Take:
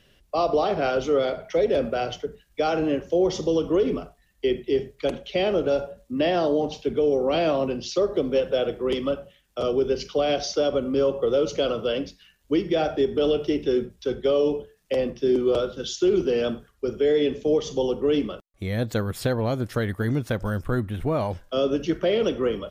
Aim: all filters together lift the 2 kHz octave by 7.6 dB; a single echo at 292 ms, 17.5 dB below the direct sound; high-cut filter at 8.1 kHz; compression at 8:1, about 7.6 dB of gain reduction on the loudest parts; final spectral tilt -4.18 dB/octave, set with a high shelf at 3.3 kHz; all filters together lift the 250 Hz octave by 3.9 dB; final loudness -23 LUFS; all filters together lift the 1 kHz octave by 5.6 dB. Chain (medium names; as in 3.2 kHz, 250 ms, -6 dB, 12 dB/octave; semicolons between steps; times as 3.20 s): low-pass 8.1 kHz; peaking EQ 250 Hz +4.5 dB; peaking EQ 1 kHz +6 dB; peaking EQ 2 kHz +6 dB; treble shelf 3.3 kHz +6 dB; compression 8:1, threshold -22 dBFS; delay 292 ms -17.5 dB; trim +4.5 dB